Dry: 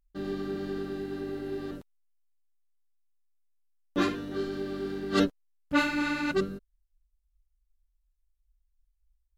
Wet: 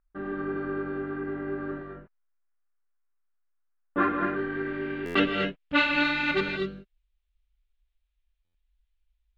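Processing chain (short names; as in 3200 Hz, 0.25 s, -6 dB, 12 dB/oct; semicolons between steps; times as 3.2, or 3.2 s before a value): resonant high shelf 3600 Hz -11 dB, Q 1.5; low-pass sweep 1400 Hz -> 3700 Hz, 4.13–5.63; tone controls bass -3 dB, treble +11 dB; non-linear reverb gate 0.27 s rising, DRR 2.5 dB; stuck buffer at 5.05/8.44, samples 512, times 8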